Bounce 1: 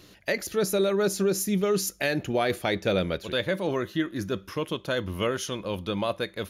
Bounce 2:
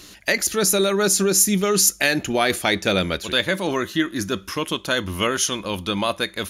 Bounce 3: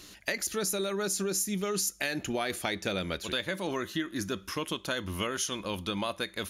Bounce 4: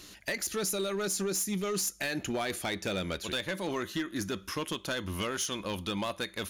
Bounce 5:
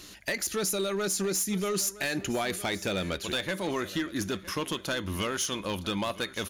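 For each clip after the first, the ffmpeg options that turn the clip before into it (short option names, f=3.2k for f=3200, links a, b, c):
-af "equalizer=f=125:t=o:w=1:g=-9,equalizer=f=500:t=o:w=1:g=-7,equalizer=f=8k:t=o:w=1:g=8,volume=9dB"
-af "acompressor=threshold=-22dB:ratio=4,volume=-6.5dB"
-af "asoftclip=type=hard:threshold=-26.5dB"
-af "aecho=1:1:962|1924|2886:0.133|0.0373|0.0105,volume=2.5dB"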